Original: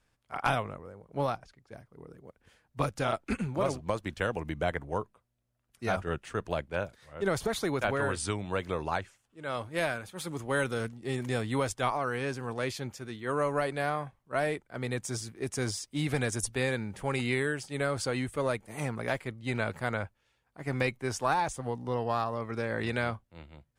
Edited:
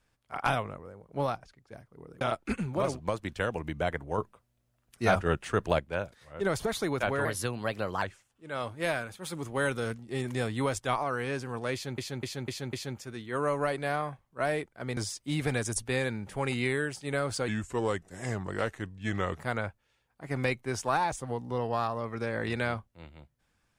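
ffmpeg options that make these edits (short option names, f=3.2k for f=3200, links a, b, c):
-filter_complex "[0:a]asplit=13[a][b][c][d][e][f][g][h][i][j][k][l][m];[a]atrim=end=2.212[n];[b]atrim=start=3.018:end=4.992[o];[c]atrim=start=4.988:end=6.602,asetpts=PTS-STARTPTS,volume=5.5dB[p];[d]atrim=start=6.598:end=8.064[q];[e]atrim=start=8.06:end=8.96,asetpts=PTS-STARTPTS,asetrate=51597,aresample=44100,atrim=end_sample=33923,asetpts=PTS-STARTPTS[r];[f]atrim=start=8.956:end=12.922[s];[g]atrim=start=12.668:end=12.922[t];[h]atrim=start=12.668:end=12.922[u];[i]atrim=start=12.668:end=12.922[v];[j]atrim=start=12.668:end=14.912[w];[k]atrim=start=15.638:end=18.154[x];[l]atrim=start=18.15:end=19.76,asetpts=PTS-STARTPTS,asetrate=37044,aresample=44100[y];[m]atrim=start=19.756[z];[n][o]acrossfade=d=0.004:c1=hsin:c2=hsin[aa];[aa][p]acrossfade=d=0.004:c1=hsin:c2=hsin[ab];[ab][q]acrossfade=d=0.004:c1=hsin:c2=hsin[ac];[ac][r]acrossfade=d=0.004:c1=hsin:c2=hsin[ad];[ad][s]acrossfade=d=0.004:c1=hsin:c2=hsin[ae];[ae][t]acrossfade=d=0.004:c1=hsin:c2=hsin[af];[af][u]acrossfade=d=0.004:c1=hsin:c2=hsin[ag];[ag][v]acrossfade=d=0.004:c1=hsin:c2=hsin[ah];[ah][w]acrossfade=d=0.004:c1=hsin:c2=hsin[ai];[ai][x]acrossfade=d=0.004:c1=hsin:c2=hsin[aj];[aj][y]acrossfade=d=0.004:c1=hsin:c2=hsin[ak];[ak][z]acrossfade=d=0.004:c1=hsin:c2=hsin"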